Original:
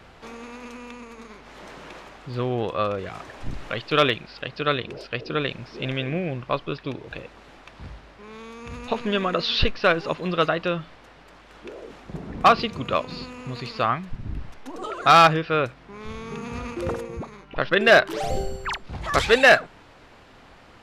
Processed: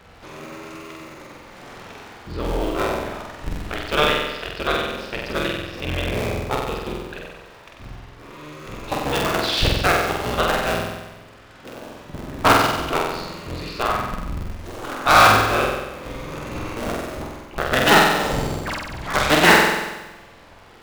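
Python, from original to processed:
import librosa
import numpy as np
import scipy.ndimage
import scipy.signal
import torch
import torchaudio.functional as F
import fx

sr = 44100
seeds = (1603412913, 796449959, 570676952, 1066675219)

y = fx.cycle_switch(x, sr, every=3, mode='inverted')
y = fx.room_flutter(y, sr, wall_m=8.0, rt60_s=1.1)
y = F.gain(torch.from_numpy(y), -1.0).numpy()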